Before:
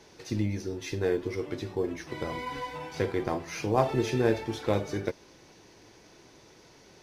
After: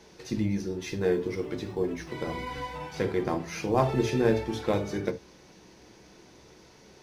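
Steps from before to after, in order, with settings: 0.81–2.14 crackle 560/s -56 dBFS; on a send: reverb, pre-delay 3 ms, DRR 10 dB

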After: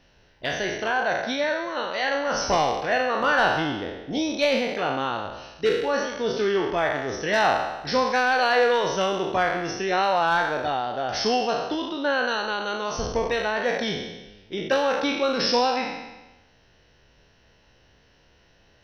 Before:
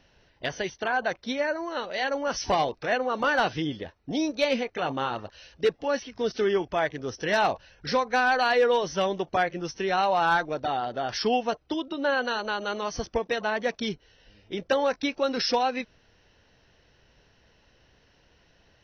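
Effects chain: spectral trails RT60 1.07 s

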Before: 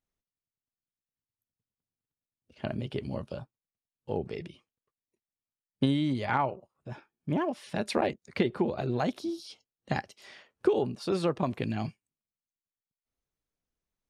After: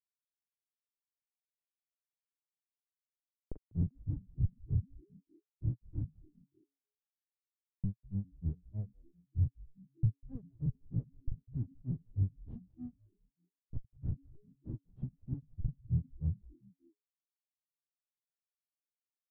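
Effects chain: pre-emphasis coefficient 0.8; Schmitt trigger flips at -54.5 dBFS; grains 0.114 s, grains 4.4/s; varispeed -27%; low-pass sweep 710 Hz -> 120 Hz, 3.35–3.96; frequency-shifting echo 0.195 s, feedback 49%, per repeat -140 Hz, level -22 dB; gain +18 dB

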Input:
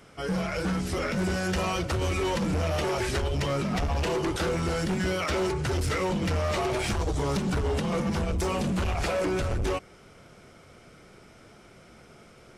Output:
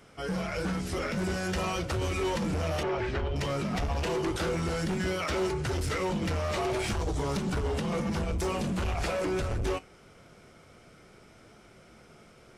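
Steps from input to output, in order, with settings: resonator 54 Hz, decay 0.22 s, mix 50%; 2.83–3.36 LPF 2700 Hz 12 dB/oct

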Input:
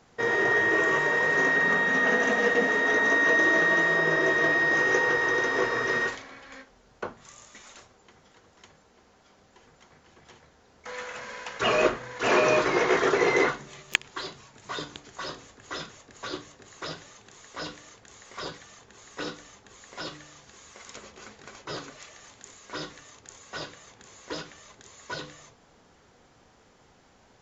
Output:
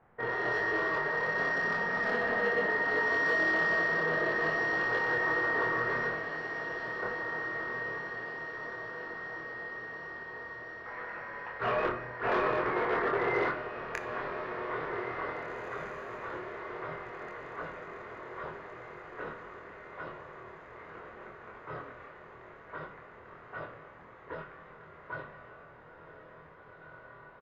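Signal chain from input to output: LPF 1900 Hz 24 dB/oct; bell 280 Hz -7.5 dB 0.83 oct; soft clip -19 dBFS, distortion -18 dB; doubler 25 ms -3 dB; diffused feedback echo 1.918 s, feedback 58%, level -7.5 dB; on a send at -10.5 dB: reverb RT60 1.3 s, pre-delay 10 ms; on the sum: gain -4.5 dB

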